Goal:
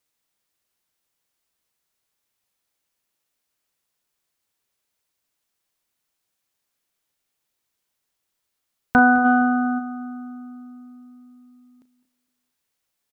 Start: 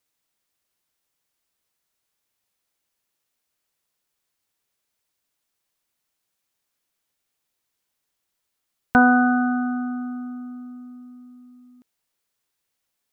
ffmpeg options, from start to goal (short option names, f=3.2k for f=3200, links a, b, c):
-filter_complex "[0:a]asplit=2[a][b];[b]adelay=232,lowpass=f=1.2k:p=1,volume=-18dB,asplit=2[c][d];[d]adelay=232,lowpass=f=1.2k:p=1,volume=0.39,asplit=2[e][f];[f]adelay=232,lowpass=f=1.2k:p=1,volume=0.39[g];[c][e][g]amix=inputs=3:normalize=0[h];[a][h]amix=inputs=2:normalize=0,asplit=3[i][j][k];[i]afade=t=out:st=9.24:d=0.02[l];[j]acontrast=20,afade=t=in:st=9.24:d=0.02,afade=t=out:st=9.78:d=0.02[m];[k]afade=t=in:st=9.78:d=0.02[n];[l][m][n]amix=inputs=3:normalize=0,asplit=2[o][p];[p]adelay=35,volume=-13dB[q];[o][q]amix=inputs=2:normalize=0,asplit=2[r][s];[s]aecho=0:1:208:0.112[t];[r][t]amix=inputs=2:normalize=0"